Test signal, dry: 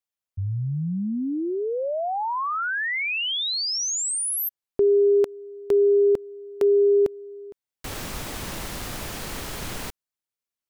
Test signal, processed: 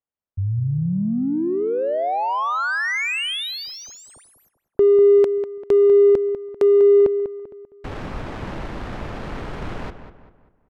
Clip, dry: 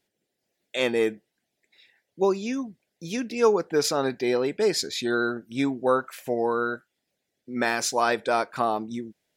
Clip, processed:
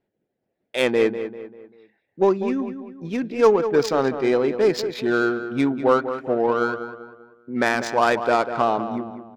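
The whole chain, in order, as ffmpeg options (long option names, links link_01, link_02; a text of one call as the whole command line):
ffmpeg -i in.wav -filter_complex "[0:a]adynamicsmooth=sensitivity=2:basefreq=1400,asplit=2[link_01][link_02];[link_02]adelay=196,lowpass=frequency=2600:poles=1,volume=-10dB,asplit=2[link_03][link_04];[link_04]adelay=196,lowpass=frequency=2600:poles=1,volume=0.42,asplit=2[link_05][link_06];[link_06]adelay=196,lowpass=frequency=2600:poles=1,volume=0.42,asplit=2[link_07][link_08];[link_08]adelay=196,lowpass=frequency=2600:poles=1,volume=0.42[link_09];[link_01][link_03][link_05][link_07][link_09]amix=inputs=5:normalize=0,volume=4.5dB" out.wav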